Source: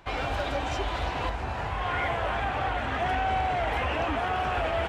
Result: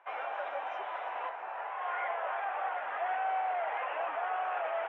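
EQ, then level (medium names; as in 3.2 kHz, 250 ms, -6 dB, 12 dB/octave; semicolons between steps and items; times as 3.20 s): boxcar filter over 10 samples; high-pass 600 Hz 24 dB/octave; distance through air 220 m; -2.5 dB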